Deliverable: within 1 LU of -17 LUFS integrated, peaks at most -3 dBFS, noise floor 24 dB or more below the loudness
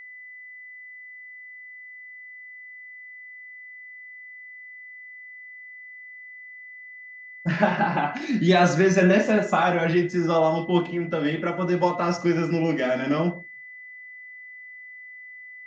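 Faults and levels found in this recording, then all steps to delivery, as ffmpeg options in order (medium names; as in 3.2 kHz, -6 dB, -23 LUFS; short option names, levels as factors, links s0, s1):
steady tone 2 kHz; tone level -40 dBFS; loudness -22.5 LUFS; peak level -6.0 dBFS; loudness target -17.0 LUFS
-> -af "bandreject=f=2000:w=30"
-af "volume=1.88,alimiter=limit=0.708:level=0:latency=1"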